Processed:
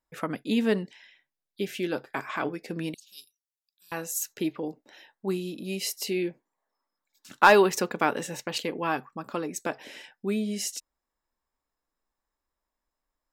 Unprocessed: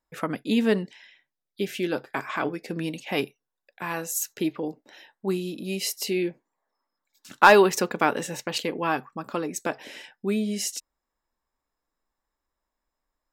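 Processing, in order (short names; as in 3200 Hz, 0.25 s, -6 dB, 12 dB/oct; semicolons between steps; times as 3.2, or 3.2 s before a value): 2.94–3.92 inverse Chebyshev high-pass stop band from 2200 Hz, stop band 40 dB; gain -2.5 dB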